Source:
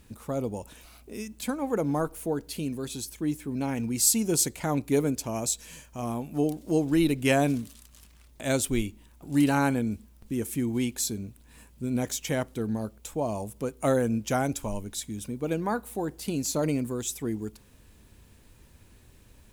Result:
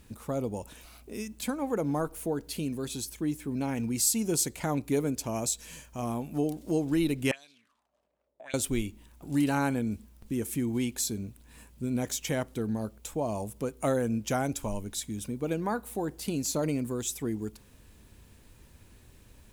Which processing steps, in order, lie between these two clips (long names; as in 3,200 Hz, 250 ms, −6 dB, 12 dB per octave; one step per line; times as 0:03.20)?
downward compressor 1.5 to 1, threshold −29 dBFS, peak gain reduction 4.5 dB
0:07.31–0:08.54: envelope filter 520–4,300 Hz, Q 5.1, up, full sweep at −23 dBFS